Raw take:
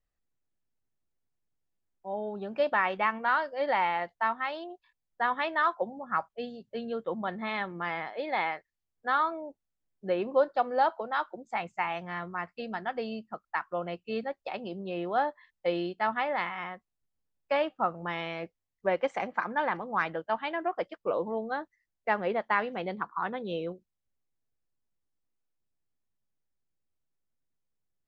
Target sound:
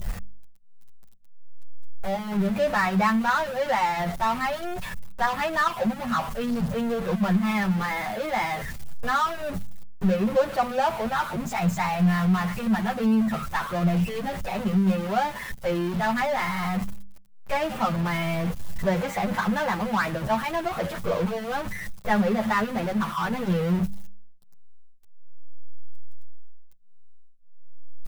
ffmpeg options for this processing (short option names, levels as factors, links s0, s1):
-filter_complex "[0:a]aeval=exprs='val(0)+0.5*0.0447*sgn(val(0))':c=same,lowshelf=f=240:t=q:w=3:g=6,bandreject=f=49.55:t=h:w=4,bandreject=f=99.1:t=h:w=4,bandreject=f=148.65:t=h:w=4,bandreject=f=198.2:t=h:w=4,bandreject=f=247.75:t=h:w=4,asplit=2[s0][s1];[s1]adynamicsmooth=sensitivity=5.5:basefreq=930,volume=1[s2];[s0][s2]amix=inputs=2:normalize=0,asplit=2[s3][s4];[s4]adelay=8.1,afreqshift=0.42[s5];[s3][s5]amix=inputs=2:normalize=1,volume=0.794"